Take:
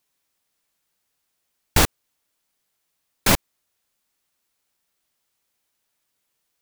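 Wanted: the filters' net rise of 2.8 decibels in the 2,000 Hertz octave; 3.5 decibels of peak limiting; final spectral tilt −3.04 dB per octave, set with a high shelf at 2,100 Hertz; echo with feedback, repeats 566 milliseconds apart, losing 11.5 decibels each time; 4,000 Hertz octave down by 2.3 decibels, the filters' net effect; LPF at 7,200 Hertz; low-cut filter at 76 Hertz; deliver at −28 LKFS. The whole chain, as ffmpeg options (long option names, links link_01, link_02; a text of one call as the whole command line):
ffmpeg -i in.wav -af "highpass=76,lowpass=7200,equalizer=frequency=2000:width_type=o:gain=3,highshelf=frequency=2100:gain=4.5,equalizer=frequency=4000:width_type=o:gain=-8,alimiter=limit=-6dB:level=0:latency=1,aecho=1:1:566|1132|1698:0.266|0.0718|0.0194,volume=-2dB" out.wav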